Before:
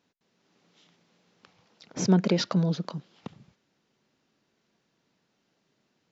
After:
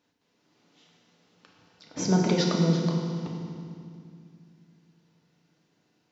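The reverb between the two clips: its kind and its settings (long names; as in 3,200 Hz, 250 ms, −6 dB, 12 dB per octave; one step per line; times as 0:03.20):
feedback delay network reverb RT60 2.3 s, low-frequency decay 1.5×, high-frequency decay 0.9×, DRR −1 dB
level −1.5 dB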